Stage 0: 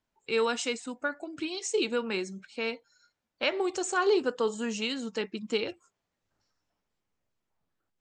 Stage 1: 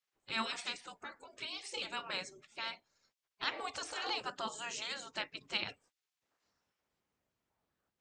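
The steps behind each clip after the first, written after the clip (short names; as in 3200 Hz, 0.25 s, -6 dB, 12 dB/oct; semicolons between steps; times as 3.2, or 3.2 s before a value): spectral gate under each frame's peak -15 dB weak; high shelf 5100 Hz -4.5 dB; gain +1.5 dB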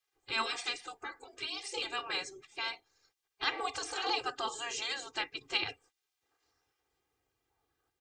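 comb 2.5 ms, depth 90%; gain +1.5 dB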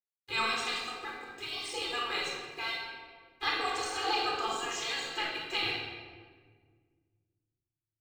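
crossover distortion -57.5 dBFS; shoebox room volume 1900 m³, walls mixed, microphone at 4 m; gain -2.5 dB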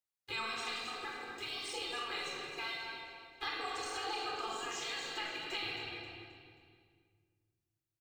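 compressor 2.5:1, threshold -40 dBFS, peak gain reduction 9.5 dB; on a send: feedback echo 0.266 s, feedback 39%, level -11 dB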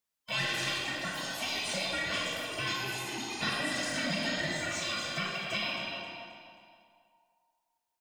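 band inversion scrambler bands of 1000 Hz; echoes that change speed 0.108 s, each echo +5 st, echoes 2, each echo -6 dB; gain +6 dB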